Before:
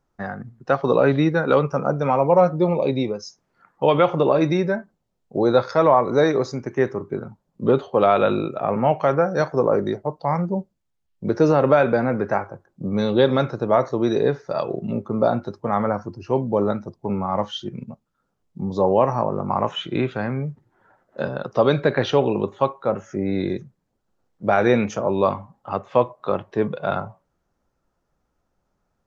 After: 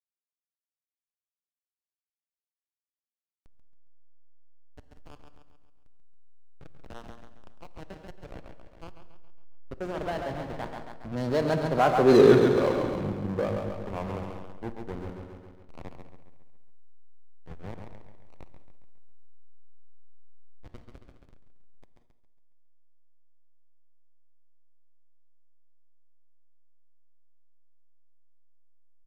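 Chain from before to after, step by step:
source passing by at 0:12.21, 48 m/s, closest 5.9 metres
slack as between gear wheels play −37 dBFS
on a send: repeating echo 137 ms, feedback 51%, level −7 dB
on the sum: reverb whose tail is shaped and stops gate 240 ms flat, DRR 11.5 dB
power curve on the samples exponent 0.7
level +2 dB

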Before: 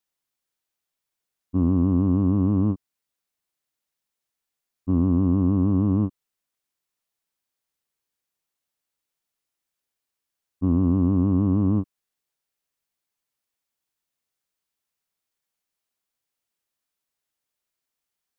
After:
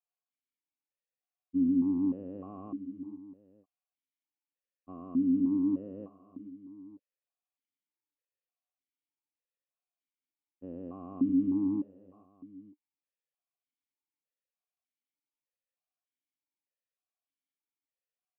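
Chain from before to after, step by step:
0:04.93–0:06.02: notch comb filter 810 Hz
multi-tap delay 83/432/899 ms −17.5/−15.5/−19.5 dB
formant filter that steps through the vowels 3.3 Hz
level −1 dB

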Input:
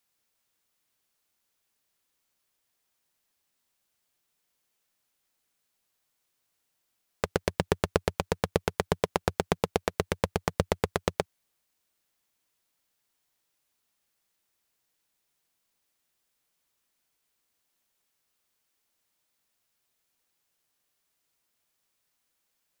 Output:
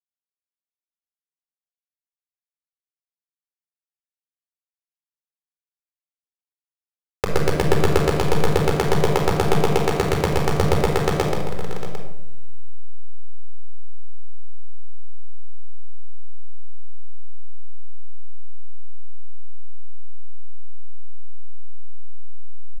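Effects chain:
hold until the input has moved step −31.5 dBFS
multi-tap delay 133/566/649/752 ms −3/−14/−14.5/−13 dB
rectangular room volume 2,400 cubic metres, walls furnished, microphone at 4.2 metres
level +2.5 dB

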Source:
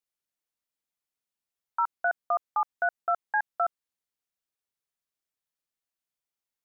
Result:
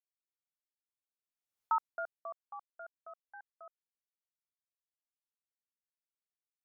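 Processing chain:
source passing by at 0:01.62, 16 m/s, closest 1.3 metres
level +1 dB

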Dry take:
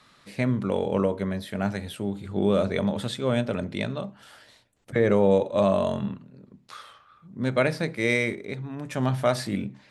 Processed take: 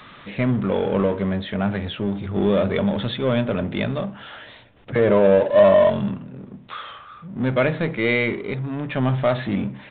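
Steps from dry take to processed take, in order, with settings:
0:04.98–0:05.90: hollow resonant body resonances 610/1,000 Hz, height 11 dB
power curve on the samples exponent 0.7
downsampling to 8,000 Hz
level −1 dB

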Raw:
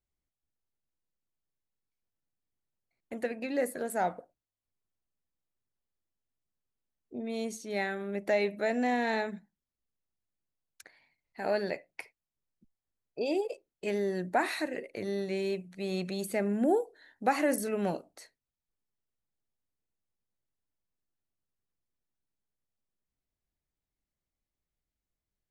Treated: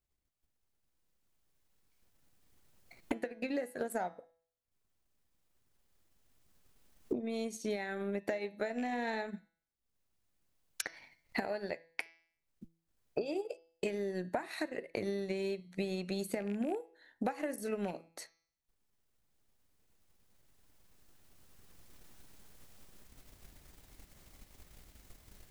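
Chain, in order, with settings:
loose part that buzzes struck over −33 dBFS, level −31 dBFS
camcorder AGC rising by 7.2 dB per second
transient designer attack +7 dB, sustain −7 dB
downward compressor 6 to 1, threshold −34 dBFS, peak gain reduction 17.5 dB
hum removal 165.2 Hz, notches 38
level +1 dB

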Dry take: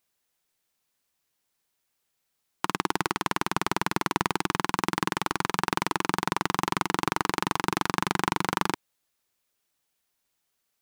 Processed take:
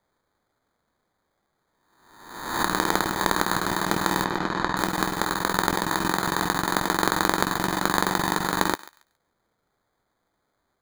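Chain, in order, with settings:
peak hold with a rise ahead of every peak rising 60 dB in 1.00 s
high-pass filter 150 Hz
decimation without filtering 16×
0:04.24–0:04.77: high-frequency loss of the air 140 metres
feedback echo with a high-pass in the loop 138 ms, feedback 22%, high-pass 1,100 Hz, level −16.5 dB

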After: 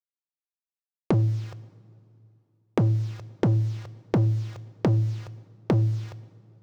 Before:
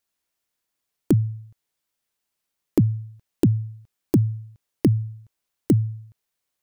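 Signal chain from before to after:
octave-band graphic EQ 125/250/500/1,000/2,000/4,000/8,000 Hz +6/−9/+11/+7/+5/−9/+11 dB
mid-hump overdrive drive 35 dB, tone 1,000 Hz, clips at −2.5 dBFS
high-pass filter 42 Hz 6 dB per octave
bit reduction 7 bits
high shelf with overshoot 7,600 Hz −11 dB, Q 1.5
coupled-rooms reverb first 0.76 s, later 2.8 s, from −19 dB, DRR 16 dB
downward compressor 2 to 1, threshold −32 dBFS, peak gain reduction 12.5 dB
level +1.5 dB

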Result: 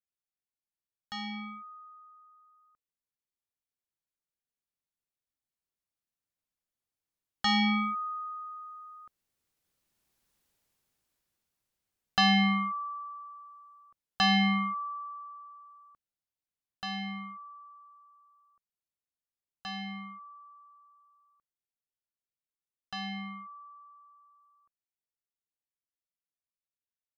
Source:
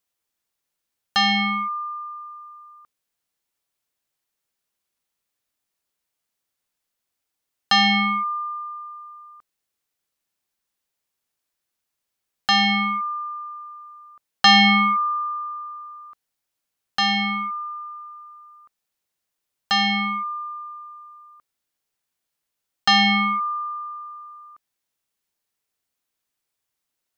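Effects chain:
source passing by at 0:10.35, 12 m/s, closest 6.4 metres
low-shelf EQ 310 Hz +10 dB
level +4 dB

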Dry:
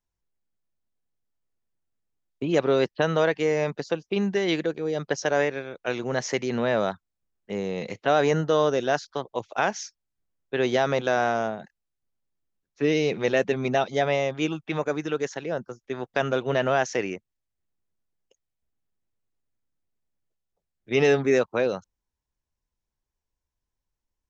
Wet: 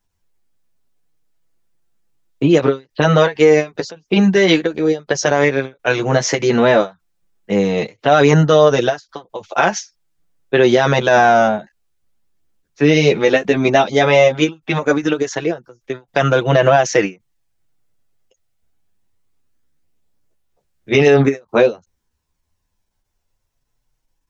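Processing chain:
multi-voice chorus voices 2, 0.12 Hz, delay 10 ms, depth 4.2 ms
boost into a limiter +17 dB
every ending faded ahead of time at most 280 dB per second
level −1 dB

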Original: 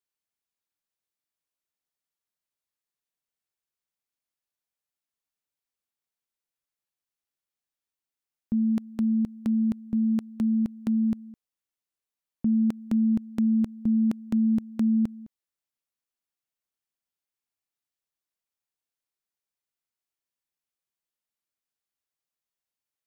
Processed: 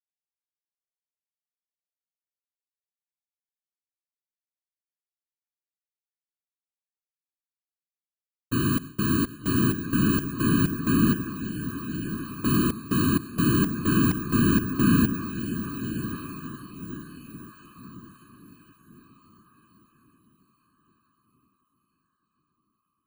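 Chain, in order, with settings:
samples in bit-reversed order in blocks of 32 samples
downward expander −33 dBFS
in parallel at +1.5 dB: brickwall limiter −28 dBFS, peak gain reduction 9.5 dB
on the sum: feedback delay with all-pass diffusion 1,133 ms, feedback 40%, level −9 dB
random phases in short frames
level −3 dB

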